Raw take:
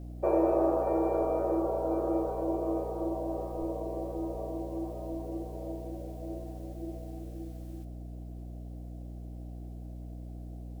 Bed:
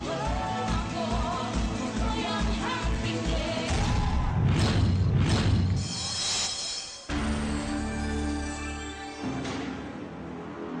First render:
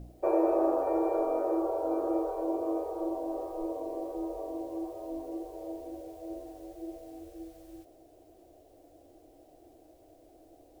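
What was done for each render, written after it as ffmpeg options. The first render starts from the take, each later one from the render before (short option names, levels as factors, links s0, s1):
-af "bandreject=f=60:t=h:w=4,bandreject=f=120:t=h:w=4,bandreject=f=180:t=h:w=4,bandreject=f=240:t=h:w=4,bandreject=f=300:t=h:w=4,bandreject=f=360:t=h:w=4,bandreject=f=420:t=h:w=4,bandreject=f=480:t=h:w=4,bandreject=f=540:t=h:w=4,bandreject=f=600:t=h:w=4"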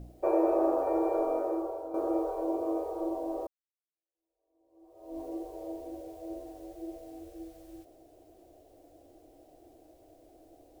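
-filter_complex "[0:a]asplit=3[s0][s1][s2];[s0]atrim=end=1.94,asetpts=PTS-STARTPTS,afade=t=out:st=1.31:d=0.63:silence=0.281838[s3];[s1]atrim=start=1.94:end=3.47,asetpts=PTS-STARTPTS,afade=t=in:d=0.004:c=hsin:silence=0.281838,afade=t=out:st=1.526:d=0.004:c=hsin[s4];[s2]atrim=start=3.47,asetpts=PTS-STARTPTS,afade=t=in:d=1.73:c=exp[s5];[s3][s4][s5]concat=n=3:v=0:a=1"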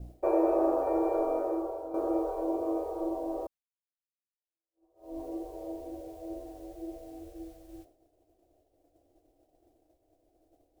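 -af "agate=range=0.0224:threshold=0.00398:ratio=3:detection=peak,lowshelf=f=100:g=5.5"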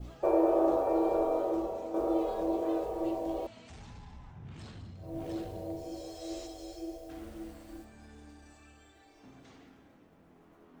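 -filter_complex "[1:a]volume=0.0708[s0];[0:a][s0]amix=inputs=2:normalize=0"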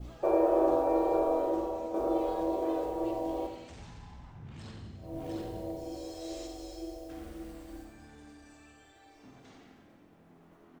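-filter_complex "[0:a]asplit=2[s0][s1];[s1]adelay=47,volume=0.299[s2];[s0][s2]amix=inputs=2:normalize=0,asplit=2[s3][s4];[s4]aecho=0:1:89|178|267|356|445:0.355|0.17|0.0817|0.0392|0.0188[s5];[s3][s5]amix=inputs=2:normalize=0"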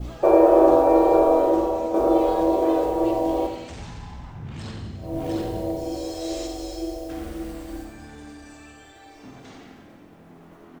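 -af "volume=3.55"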